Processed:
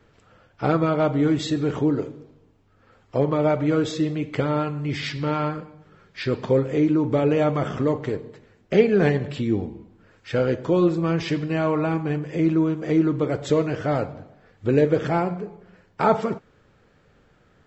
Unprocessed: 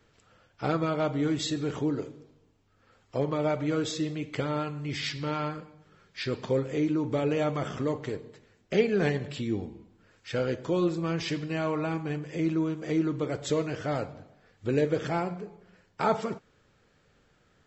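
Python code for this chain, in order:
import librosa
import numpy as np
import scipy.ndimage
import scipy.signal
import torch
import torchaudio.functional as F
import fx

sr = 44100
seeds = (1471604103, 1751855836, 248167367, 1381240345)

y = fx.high_shelf(x, sr, hz=3100.0, db=-10.0)
y = y * 10.0 ** (7.5 / 20.0)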